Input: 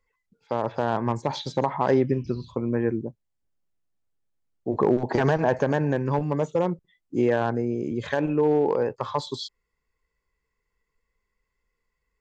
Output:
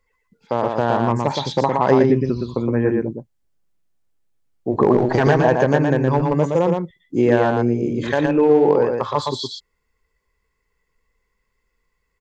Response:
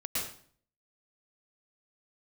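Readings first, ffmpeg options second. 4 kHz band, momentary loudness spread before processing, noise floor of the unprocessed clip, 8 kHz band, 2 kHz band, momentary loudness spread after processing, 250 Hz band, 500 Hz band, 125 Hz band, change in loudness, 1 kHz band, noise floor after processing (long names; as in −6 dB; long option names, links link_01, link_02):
+7.0 dB, 10 LU, −80 dBFS, can't be measured, +7.0 dB, 11 LU, +7.0 dB, +7.0 dB, +7.0 dB, +7.0 dB, +7.0 dB, −72 dBFS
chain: -af "aecho=1:1:117:0.631,volume=5.5dB"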